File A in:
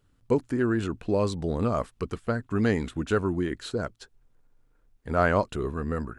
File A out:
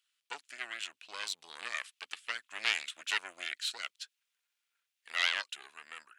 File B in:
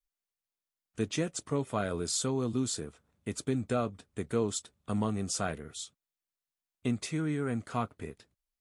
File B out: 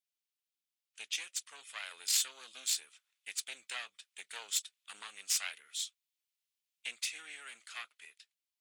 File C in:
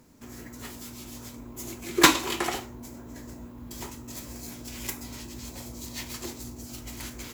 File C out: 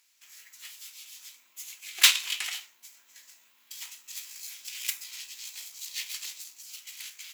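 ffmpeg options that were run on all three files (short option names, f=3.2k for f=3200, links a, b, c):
-af "dynaudnorm=f=690:g=5:m=3.5dB,aeval=exprs='0.841*(cos(1*acos(clip(val(0)/0.841,-1,1)))-cos(1*PI/2))+0.188*(cos(8*acos(clip(val(0)/0.841,-1,1)))-cos(8*PI/2))':c=same,highpass=f=2.7k:t=q:w=1.6,volume=-2dB"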